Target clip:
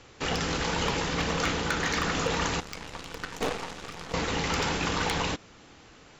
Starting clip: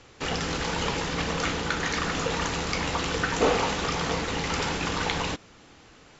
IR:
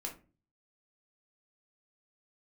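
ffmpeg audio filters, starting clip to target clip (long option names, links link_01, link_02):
-filter_complex "[0:a]asettb=1/sr,asplit=3[link_01][link_02][link_03];[link_01]atrim=end=2.604[link_04];[link_02]atrim=start=2.6:end=4.14,asetpts=PTS-STARTPTS,afade=type=in:duration=0.004:curve=qsin,afade=type=out:start_time=1.536:duration=0.004:curve=qsin,aeval=exprs='0.335*(cos(1*acos(clip(val(0)/0.335,-1,1)))-cos(1*PI/2))+0.0944*(cos(3*acos(clip(val(0)/0.335,-1,1)))-cos(3*PI/2))+0.0133*(cos(6*acos(clip(val(0)/0.335,-1,1)))-cos(6*PI/2))':channel_layout=same[link_05];[link_03]atrim=start=4.136[link_06];[link_04][link_05]acrossfade=duration=0.004:curve1=hsin:curve2=qsin[link_07];[link_07][link_06]acrossfade=duration=0.004:curve1=qsin:curve2=hsin,aeval=exprs='0.141*(abs(mod(val(0)/0.141+3,4)-2)-1)':channel_layout=same"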